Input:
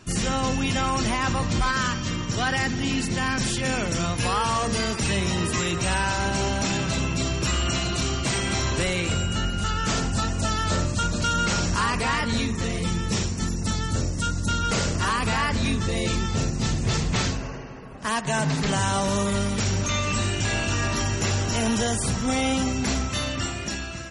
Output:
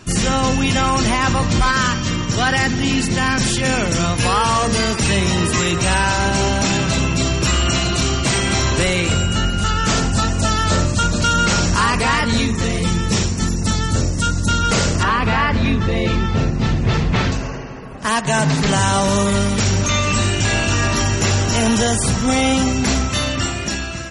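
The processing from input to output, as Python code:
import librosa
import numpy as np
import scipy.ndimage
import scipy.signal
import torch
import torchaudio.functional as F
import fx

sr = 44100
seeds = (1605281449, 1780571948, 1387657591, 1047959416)

y = fx.lowpass(x, sr, hz=3100.0, slope=12, at=(15.03, 17.32))
y = y * 10.0 ** (7.5 / 20.0)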